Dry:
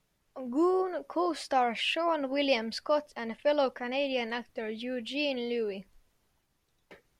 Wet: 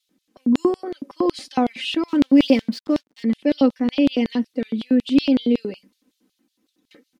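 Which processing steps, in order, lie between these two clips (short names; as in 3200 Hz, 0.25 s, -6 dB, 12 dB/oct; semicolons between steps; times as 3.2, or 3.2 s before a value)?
resonant low shelf 460 Hz +8.5 dB, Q 1.5; comb 3.9 ms, depth 85%; 2.08–3.23 backlash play -38.5 dBFS; LFO high-pass square 5.4 Hz 260–3700 Hz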